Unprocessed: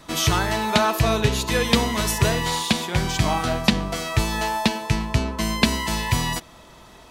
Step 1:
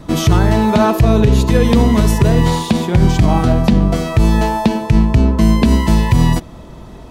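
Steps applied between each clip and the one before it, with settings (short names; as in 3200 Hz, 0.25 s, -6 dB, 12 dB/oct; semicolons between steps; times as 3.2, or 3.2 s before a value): tilt shelf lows +9 dB, about 650 Hz; maximiser +9.5 dB; gain -1 dB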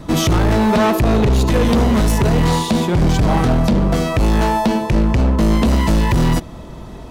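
hard clip -12.5 dBFS, distortion -8 dB; gain +1.5 dB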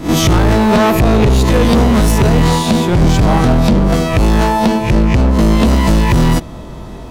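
spectral swells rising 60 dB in 0.32 s; gain +3 dB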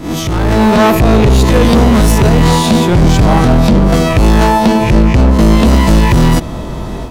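limiter -11.5 dBFS, peak gain reduction 10 dB; AGC gain up to 9 dB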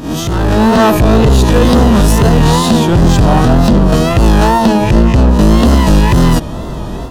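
notch 2200 Hz, Q 5.6; wow and flutter 84 cents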